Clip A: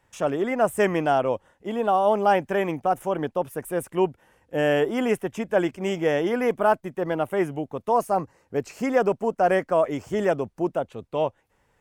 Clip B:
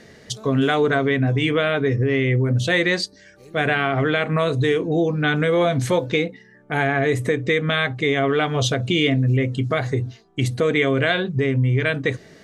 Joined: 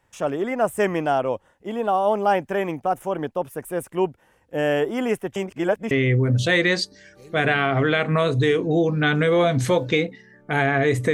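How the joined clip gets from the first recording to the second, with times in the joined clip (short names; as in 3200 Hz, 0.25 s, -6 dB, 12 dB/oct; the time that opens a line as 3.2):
clip A
5.36–5.91 reverse
5.91 switch to clip B from 2.12 s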